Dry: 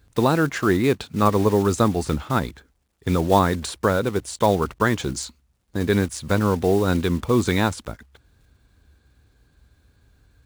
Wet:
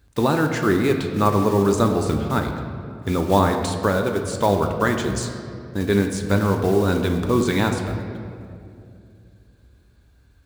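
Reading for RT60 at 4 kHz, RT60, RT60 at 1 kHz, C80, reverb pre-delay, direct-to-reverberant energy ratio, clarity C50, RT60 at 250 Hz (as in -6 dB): 1.4 s, 2.5 s, 2.1 s, 7.5 dB, 3 ms, 4.0 dB, 6.5 dB, 3.3 s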